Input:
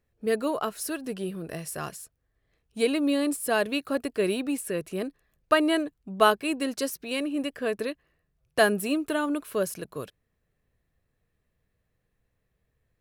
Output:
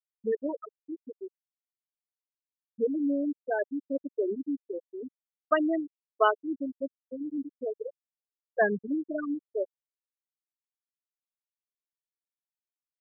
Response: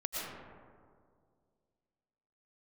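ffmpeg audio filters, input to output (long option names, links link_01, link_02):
-af "afwtdn=0.02,bandreject=frequency=3800:width=20,afftfilt=real='re*gte(hypot(re,im),0.282)':imag='im*gte(hypot(re,im),0.282)':win_size=1024:overlap=0.75,volume=-2.5dB"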